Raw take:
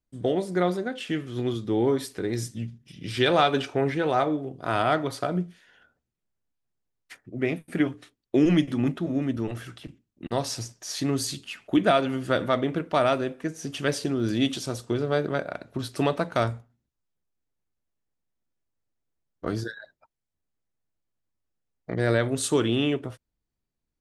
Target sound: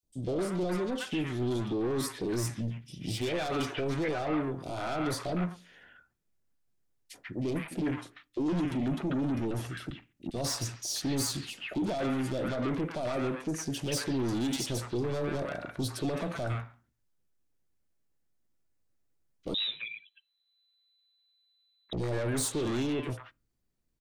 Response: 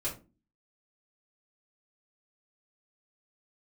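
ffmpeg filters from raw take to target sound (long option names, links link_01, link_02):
-filter_complex "[0:a]alimiter=limit=-19.5dB:level=0:latency=1:release=15,asoftclip=type=tanh:threshold=-31dB,acrossover=split=900|3100[link_01][link_02][link_03];[link_01]adelay=30[link_04];[link_02]adelay=140[link_05];[link_04][link_05][link_03]amix=inputs=3:normalize=0,asplit=2[link_06][link_07];[1:a]atrim=start_sample=2205[link_08];[link_07][link_08]afir=irnorm=-1:irlink=0,volume=-25dB[link_09];[link_06][link_09]amix=inputs=2:normalize=0,asettb=1/sr,asplit=3[link_10][link_11][link_12];[link_10]atrim=end=19.544[link_13];[link_11]atrim=start=19.54:end=21.93,asetpts=PTS-STARTPTS,afade=type=in:duration=0.004:curve=qsin,afade=type=out:start_time=2.386:duration=0.004:curve=qsin,lowpass=frequency=3400:width_type=q:width=0.5098,lowpass=frequency=3400:width_type=q:width=0.6013,lowpass=frequency=3400:width_type=q:width=0.9,lowpass=frequency=3400:width_type=q:width=2.563,afreqshift=-4000[link_14];[link_12]atrim=start=21.926[link_15];[link_13][link_14]acrossfade=duration=0.004:curve1=hsin:curve2=qsin[link_16];[link_16][link_15]acrossfade=duration=0.004:curve1=qsin:curve2=hsin,volume=3.5dB"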